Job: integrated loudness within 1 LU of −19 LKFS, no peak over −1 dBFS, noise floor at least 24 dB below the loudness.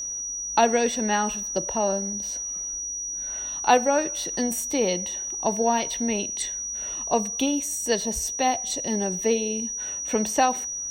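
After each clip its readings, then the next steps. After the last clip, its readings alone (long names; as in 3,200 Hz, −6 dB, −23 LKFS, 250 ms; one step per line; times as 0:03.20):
interfering tone 5,800 Hz; level of the tone −29 dBFS; integrated loudness −24.5 LKFS; sample peak −4.5 dBFS; target loudness −19.0 LKFS
→ notch filter 5,800 Hz, Q 30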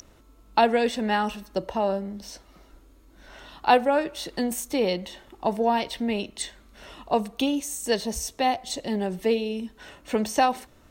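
interfering tone none found; integrated loudness −26.0 LKFS; sample peak −5.0 dBFS; target loudness −19.0 LKFS
→ level +7 dB
brickwall limiter −1 dBFS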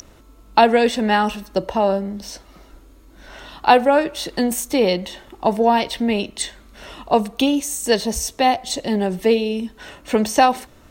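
integrated loudness −19.0 LKFS; sample peak −1.0 dBFS; background noise floor −48 dBFS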